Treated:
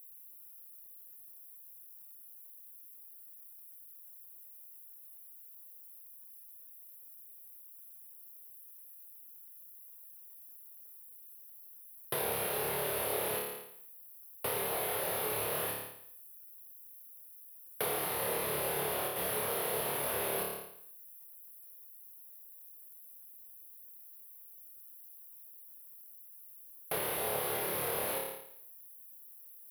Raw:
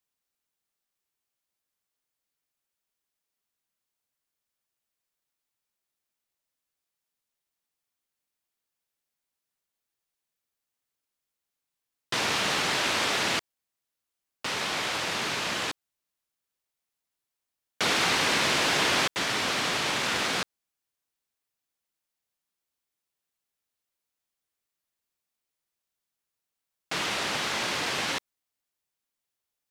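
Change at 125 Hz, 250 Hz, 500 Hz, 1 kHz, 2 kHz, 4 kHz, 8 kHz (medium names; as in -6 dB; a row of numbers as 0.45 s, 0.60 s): -6.0 dB, -9.5 dB, -1.0 dB, -8.0 dB, -13.5 dB, -16.0 dB, -4.5 dB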